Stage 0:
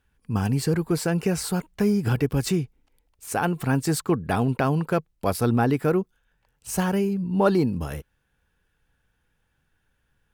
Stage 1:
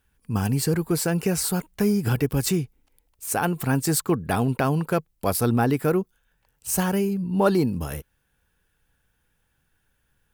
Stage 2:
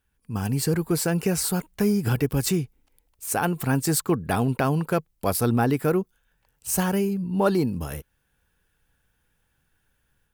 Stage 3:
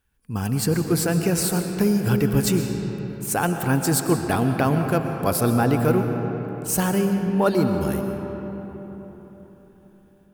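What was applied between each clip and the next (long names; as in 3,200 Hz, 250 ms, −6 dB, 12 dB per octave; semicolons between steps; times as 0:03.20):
high-shelf EQ 8,200 Hz +11 dB
automatic gain control gain up to 5.5 dB; level −5.5 dB
convolution reverb RT60 4.1 s, pre-delay 80 ms, DRR 5 dB; level +1.5 dB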